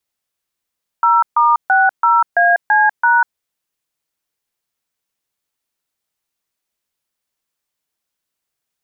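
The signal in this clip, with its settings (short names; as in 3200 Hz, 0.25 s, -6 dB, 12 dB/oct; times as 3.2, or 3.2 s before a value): DTMF "0*60AC#", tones 0.195 s, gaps 0.139 s, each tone -11.5 dBFS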